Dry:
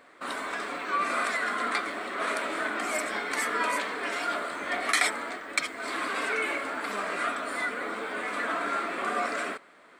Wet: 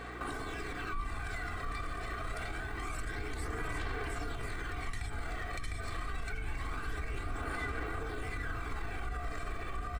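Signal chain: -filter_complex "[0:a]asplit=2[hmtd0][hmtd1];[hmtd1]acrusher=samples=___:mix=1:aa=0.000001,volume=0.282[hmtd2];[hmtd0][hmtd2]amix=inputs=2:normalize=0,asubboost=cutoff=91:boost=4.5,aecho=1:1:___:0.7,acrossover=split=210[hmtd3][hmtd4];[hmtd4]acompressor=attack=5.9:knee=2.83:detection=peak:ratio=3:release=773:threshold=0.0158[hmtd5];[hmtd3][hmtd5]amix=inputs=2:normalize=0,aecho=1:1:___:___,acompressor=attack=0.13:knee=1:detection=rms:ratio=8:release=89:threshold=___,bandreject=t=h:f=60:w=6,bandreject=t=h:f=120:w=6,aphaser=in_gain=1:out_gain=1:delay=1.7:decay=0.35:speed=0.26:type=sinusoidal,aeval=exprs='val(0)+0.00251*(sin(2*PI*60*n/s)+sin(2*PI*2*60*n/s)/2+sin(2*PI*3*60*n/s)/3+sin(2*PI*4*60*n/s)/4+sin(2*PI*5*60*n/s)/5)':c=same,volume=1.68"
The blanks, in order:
39, 2.6, 705, 0.531, 0.0126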